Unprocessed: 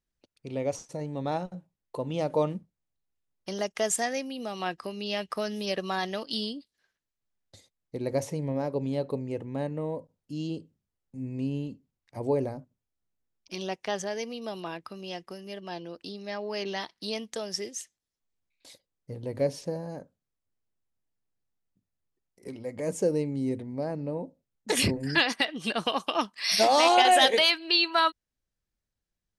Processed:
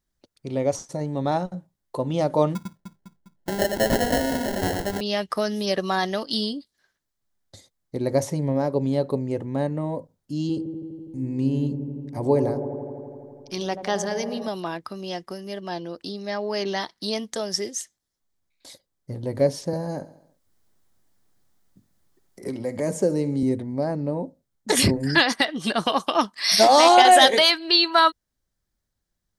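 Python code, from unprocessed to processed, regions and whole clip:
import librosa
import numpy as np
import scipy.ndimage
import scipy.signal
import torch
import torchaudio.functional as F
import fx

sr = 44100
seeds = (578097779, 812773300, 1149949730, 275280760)

y = fx.chain(x, sr, fx.echo_alternate(ms=101, hz=2000.0, feedback_pct=72, wet_db=-4),
    fx.sample_hold(seeds[0], rate_hz=1200.0, jitter_pct=0), at=(2.55, 5.01))
y = fx.chain(y, sr, fx.notch(hz=650.0, q=11.0),
    fx.echo_wet_lowpass(ms=83, feedback_pct=81, hz=830.0, wet_db=-7.5), at=(10.41, 14.48))
y = fx.chain(y, sr, fx.echo_feedback(ms=69, feedback_pct=52, wet_db=-17.0),
    fx.band_squash(depth_pct=40), at=(19.73, 23.43))
y = fx.peak_eq(y, sr, hz=2600.0, db=-7.5, octaves=0.43)
y = fx.notch(y, sr, hz=470.0, q=12.0)
y = y * librosa.db_to_amplitude(7.0)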